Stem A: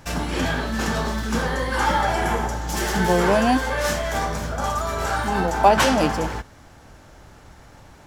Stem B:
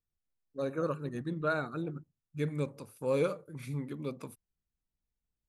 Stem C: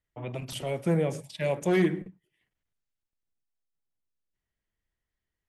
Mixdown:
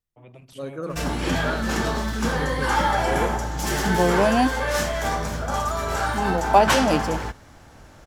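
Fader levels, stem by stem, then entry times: -0.5 dB, +1.0 dB, -11.0 dB; 0.90 s, 0.00 s, 0.00 s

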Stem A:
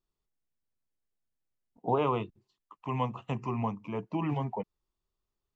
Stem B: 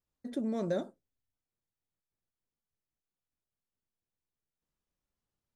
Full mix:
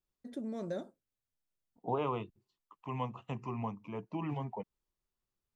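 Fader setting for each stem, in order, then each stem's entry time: -6.0 dB, -6.0 dB; 0.00 s, 0.00 s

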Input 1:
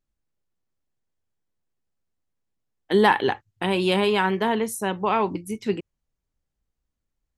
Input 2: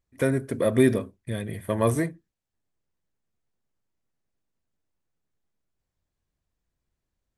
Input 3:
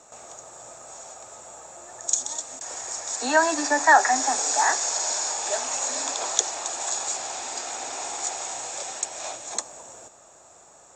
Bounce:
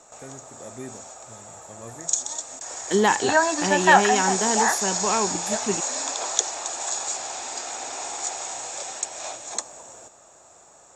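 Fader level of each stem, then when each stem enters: -2.0 dB, -19.0 dB, 0.0 dB; 0.00 s, 0.00 s, 0.00 s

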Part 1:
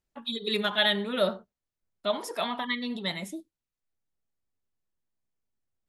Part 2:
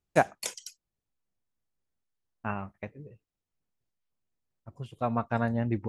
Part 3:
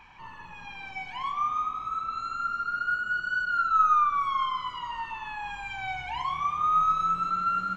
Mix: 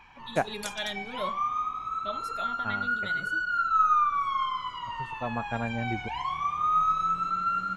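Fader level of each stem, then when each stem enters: -10.0 dB, -4.0 dB, -1.0 dB; 0.00 s, 0.20 s, 0.00 s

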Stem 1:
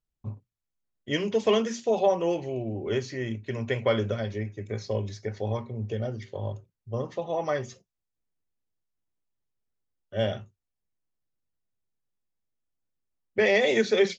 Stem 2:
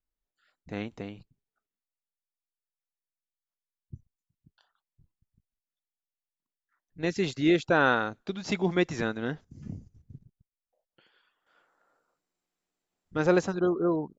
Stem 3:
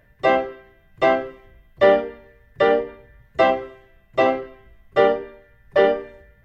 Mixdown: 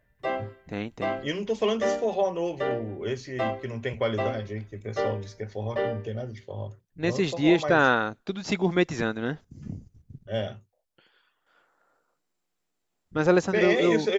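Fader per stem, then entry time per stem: -2.5 dB, +2.5 dB, -12.0 dB; 0.15 s, 0.00 s, 0.00 s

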